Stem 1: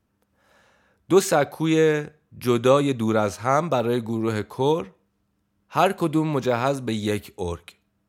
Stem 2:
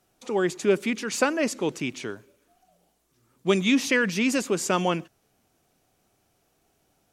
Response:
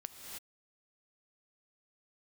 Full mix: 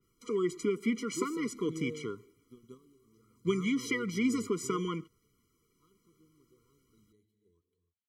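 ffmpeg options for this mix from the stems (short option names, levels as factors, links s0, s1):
-filter_complex "[0:a]equalizer=f=1700:w=0.97:g=-11.5,adelay=50,volume=0.15,asplit=2[s0][s1];[s1]volume=0.0631[s2];[1:a]bandreject=f=3600:w=5.9,acompressor=threshold=0.0794:ratio=6,adynamicequalizer=threshold=0.00794:dfrequency=2700:dqfactor=0.7:tfrequency=2700:tqfactor=0.7:attack=5:release=100:ratio=0.375:range=2:mode=cutabove:tftype=highshelf,volume=1.19,asplit=2[s3][s4];[s4]apad=whole_len=358857[s5];[s0][s5]sidechaingate=range=0.0447:threshold=0.00112:ratio=16:detection=peak[s6];[2:a]atrim=start_sample=2205[s7];[s2][s7]afir=irnorm=-1:irlink=0[s8];[s6][s3][s8]amix=inputs=3:normalize=0,flanger=delay=0.3:depth=4.3:regen=68:speed=0.57:shape=triangular,afftfilt=real='re*eq(mod(floor(b*sr/1024/480),2),0)':imag='im*eq(mod(floor(b*sr/1024/480),2),0)':win_size=1024:overlap=0.75"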